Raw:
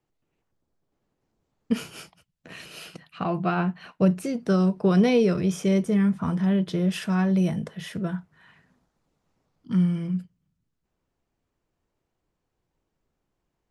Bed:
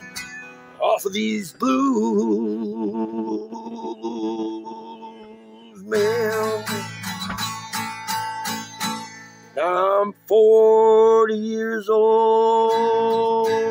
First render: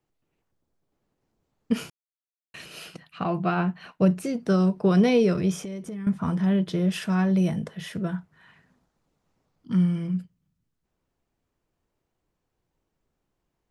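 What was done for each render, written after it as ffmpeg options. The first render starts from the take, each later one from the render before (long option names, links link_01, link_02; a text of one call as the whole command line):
ffmpeg -i in.wav -filter_complex "[0:a]asettb=1/sr,asplit=3[link_01][link_02][link_03];[link_01]atrim=end=5.574[link_04];[link_02]atrim=start=5.57:end=6.07,asetpts=PTS-STARTPTS,afade=type=in:duration=0.004:curve=qsin,afade=type=out:start_time=0.496:duration=0.004:curve=qsin,acompressor=threshold=-31dB:ratio=16:attack=3.2:release=140:knee=1:detection=peak[link_05];[link_03]atrim=start=6.066[link_06];[link_04][link_05]acrossfade=duration=0.004:curve1=hsin:curve2=qsin[link_07];[link_07][link_06]acrossfade=duration=0.004:curve1=qsin:curve2=hsin,asplit=3[link_08][link_09][link_10];[link_08]atrim=end=1.9,asetpts=PTS-STARTPTS,afade=type=out:start_time=1.896:duration=0.004:curve=hsin[link_11];[link_09]atrim=start=1.9:end=2.54,asetpts=PTS-STARTPTS,volume=0[link_12];[link_10]atrim=start=2.54,asetpts=PTS-STARTPTS,afade=type=in:duration=0.004:curve=hsin[link_13];[link_11][link_12][link_13]concat=n=3:v=0:a=1" out.wav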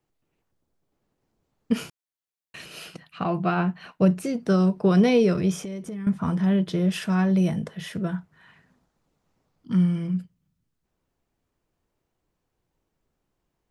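ffmpeg -i in.wav -af "volume=1dB" out.wav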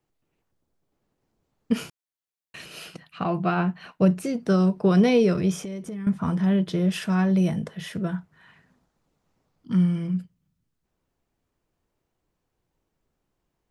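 ffmpeg -i in.wav -af anull out.wav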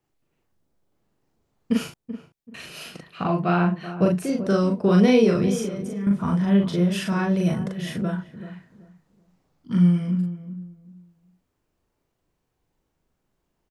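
ffmpeg -i in.wav -filter_complex "[0:a]asplit=2[link_01][link_02];[link_02]adelay=40,volume=-2dB[link_03];[link_01][link_03]amix=inputs=2:normalize=0,asplit=2[link_04][link_05];[link_05]adelay=383,lowpass=frequency=860:poles=1,volume=-11.5dB,asplit=2[link_06][link_07];[link_07]adelay=383,lowpass=frequency=860:poles=1,volume=0.26,asplit=2[link_08][link_09];[link_09]adelay=383,lowpass=frequency=860:poles=1,volume=0.26[link_10];[link_04][link_06][link_08][link_10]amix=inputs=4:normalize=0" out.wav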